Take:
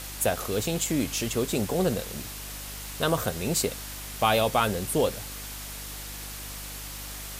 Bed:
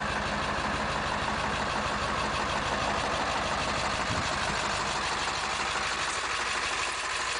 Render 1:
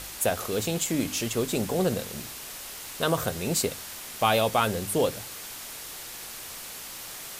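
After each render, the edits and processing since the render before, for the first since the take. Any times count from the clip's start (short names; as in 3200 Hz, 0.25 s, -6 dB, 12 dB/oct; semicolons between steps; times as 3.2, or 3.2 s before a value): de-hum 50 Hz, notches 6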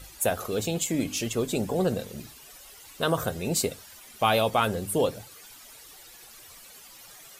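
denoiser 13 dB, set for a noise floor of -40 dBFS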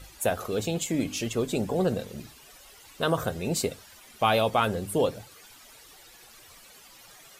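high shelf 6700 Hz -6.5 dB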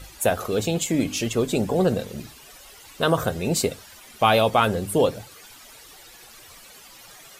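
gain +5 dB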